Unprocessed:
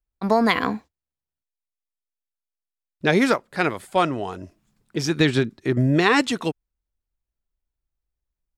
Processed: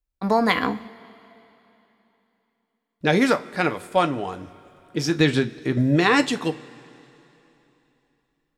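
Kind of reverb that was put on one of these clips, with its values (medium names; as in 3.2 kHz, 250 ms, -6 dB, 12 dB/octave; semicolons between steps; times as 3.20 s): two-slope reverb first 0.24 s, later 3.3 s, from -22 dB, DRR 7.5 dB; trim -1 dB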